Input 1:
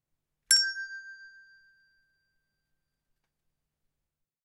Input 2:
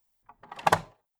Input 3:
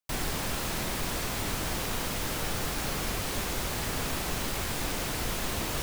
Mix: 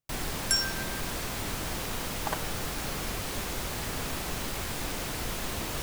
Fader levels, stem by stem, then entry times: -4.5 dB, -12.0 dB, -2.0 dB; 0.00 s, 1.60 s, 0.00 s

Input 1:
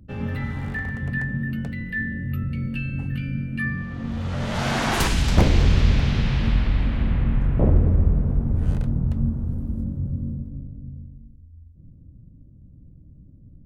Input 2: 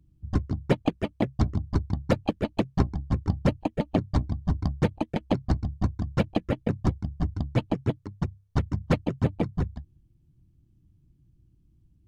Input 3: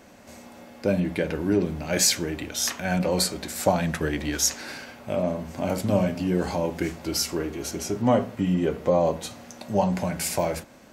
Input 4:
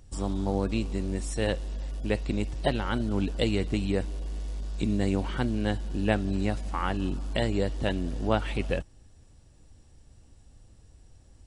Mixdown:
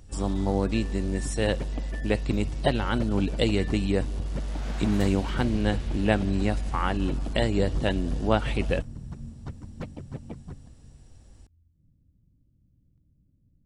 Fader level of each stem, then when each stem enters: -17.5 dB, -14.0 dB, mute, +2.5 dB; 0.00 s, 0.90 s, mute, 0.00 s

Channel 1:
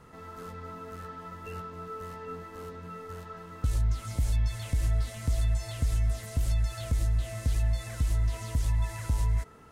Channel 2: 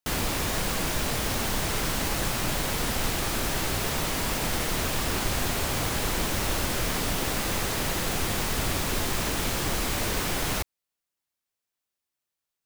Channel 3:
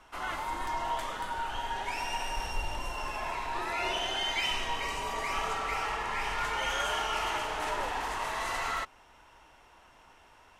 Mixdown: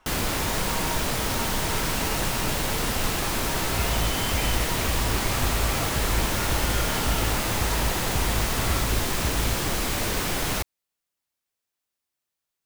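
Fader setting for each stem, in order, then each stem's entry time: -2.0 dB, +1.5 dB, -3.0 dB; 0.15 s, 0.00 s, 0.00 s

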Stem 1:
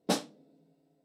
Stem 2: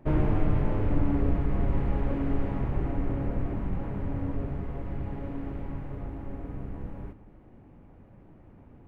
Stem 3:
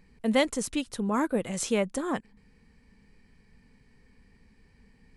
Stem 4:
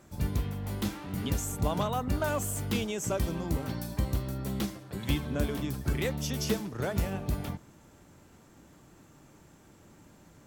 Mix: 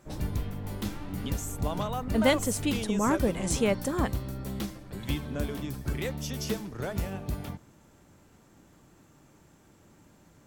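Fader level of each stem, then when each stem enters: -16.5 dB, -17.0 dB, +0.5 dB, -2.0 dB; 0.00 s, 0.00 s, 1.90 s, 0.00 s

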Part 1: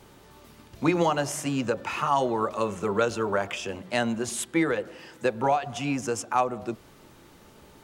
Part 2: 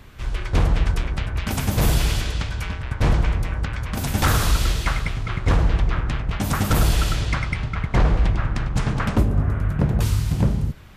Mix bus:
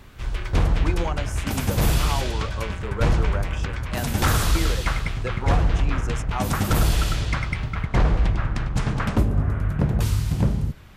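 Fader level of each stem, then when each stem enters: -6.5 dB, -1.5 dB; 0.00 s, 0.00 s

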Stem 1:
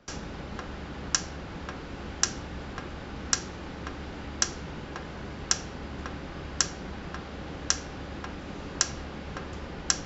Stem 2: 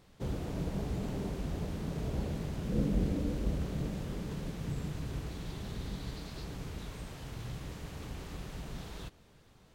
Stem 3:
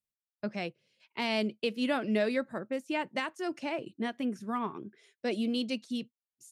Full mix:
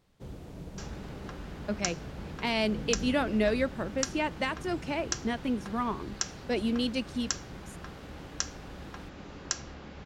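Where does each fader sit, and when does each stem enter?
-6.5 dB, -7.5 dB, +2.0 dB; 0.70 s, 0.00 s, 1.25 s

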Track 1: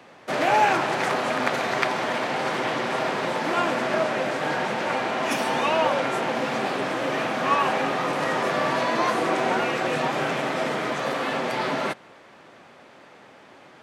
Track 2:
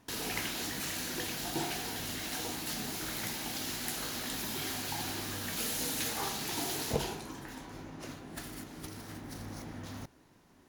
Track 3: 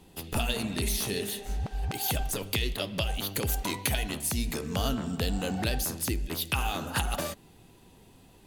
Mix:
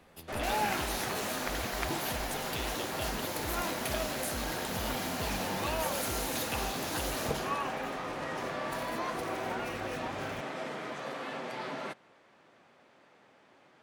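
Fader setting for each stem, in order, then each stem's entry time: -12.5 dB, -2.5 dB, -10.0 dB; 0.00 s, 0.35 s, 0.00 s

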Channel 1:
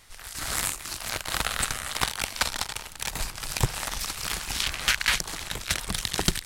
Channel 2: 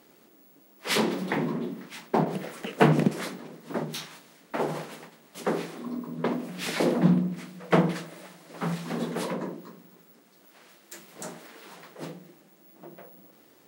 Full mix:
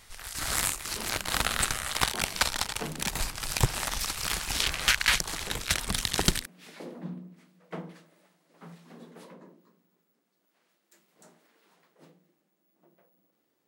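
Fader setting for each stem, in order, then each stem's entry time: 0.0 dB, -18.0 dB; 0.00 s, 0.00 s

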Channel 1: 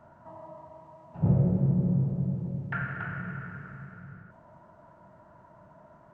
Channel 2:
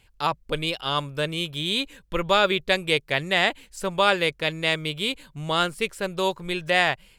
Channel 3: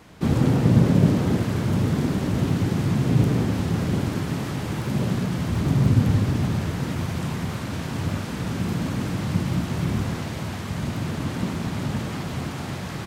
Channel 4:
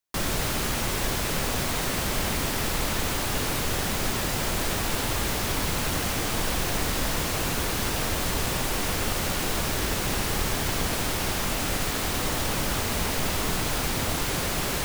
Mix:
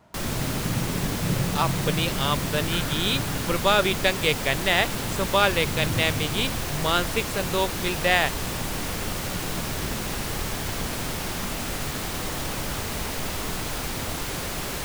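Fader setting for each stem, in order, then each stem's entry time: -4.0 dB, -0.5 dB, -12.0 dB, -3.0 dB; 0.00 s, 1.35 s, 0.00 s, 0.00 s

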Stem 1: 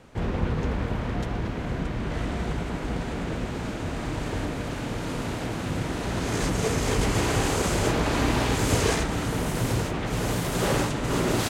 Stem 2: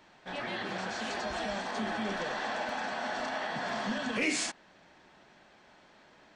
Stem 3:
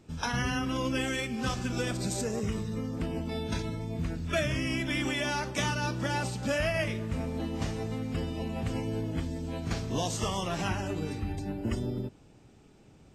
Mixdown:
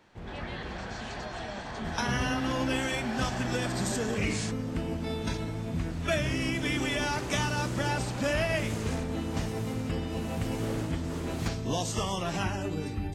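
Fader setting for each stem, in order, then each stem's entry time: -14.5 dB, -4.0 dB, +0.5 dB; 0.00 s, 0.00 s, 1.75 s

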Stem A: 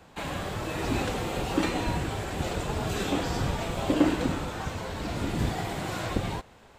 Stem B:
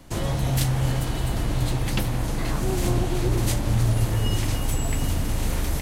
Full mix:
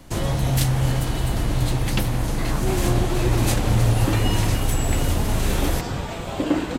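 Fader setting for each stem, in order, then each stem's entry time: +1.0 dB, +2.5 dB; 2.50 s, 0.00 s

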